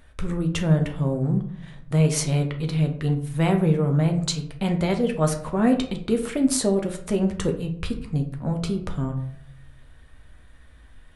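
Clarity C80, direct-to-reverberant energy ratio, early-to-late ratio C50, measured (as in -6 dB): 14.5 dB, 3.5 dB, 10.5 dB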